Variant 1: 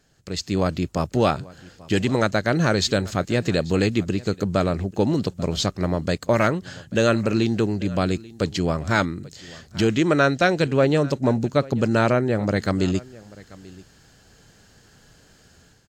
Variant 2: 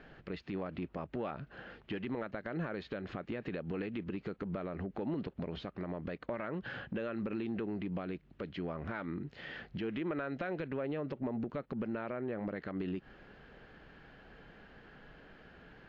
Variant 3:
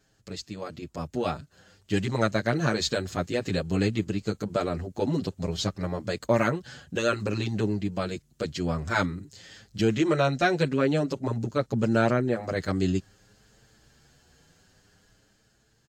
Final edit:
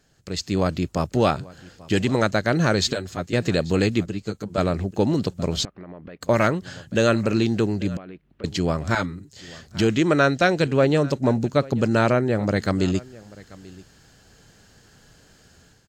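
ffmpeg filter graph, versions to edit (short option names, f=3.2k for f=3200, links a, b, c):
-filter_complex "[2:a]asplit=3[a][b][c];[1:a]asplit=2[d][e];[0:a]asplit=6[f][g][h][i][j][k];[f]atrim=end=2.932[l];[a]atrim=start=2.928:end=3.332[m];[g]atrim=start=3.328:end=4.062[n];[b]atrim=start=4.058:end=4.582[o];[h]atrim=start=4.578:end=5.652[p];[d]atrim=start=5.648:end=6.212[q];[i]atrim=start=6.208:end=7.972[r];[e]atrim=start=7.968:end=8.442[s];[j]atrim=start=8.438:end=8.952[t];[c]atrim=start=8.948:end=9.362[u];[k]atrim=start=9.358[v];[l][m]acrossfade=d=0.004:c1=hsin:c2=hsin[w];[w][n]acrossfade=d=0.004:c1=hsin:c2=hsin[x];[x][o]acrossfade=d=0.004:c1=hsin:c2=hsin[y];[y][p]acrossfade=d=0.004:c1=hsin:c2=hsin[z];[z][q]acrossfade=d=0.004:c1=hsin:c2=hsin[aa];[aa][r]acrossfade=d=0.004:c1=hsin:c2=hsin[ab];[ab][s]acrossfade=d=0.004:c1=hsin:c2=hsin[ac];[ac][t]acrossfade=d=0.004:c1=hsin:c2=hsin[ad];[ad][u]acrossfade=d=0.004:c1=hsin:c2=hsin[ae];[ae][v]acrossfade=d=0.004:c1=hsin:c2=hsin"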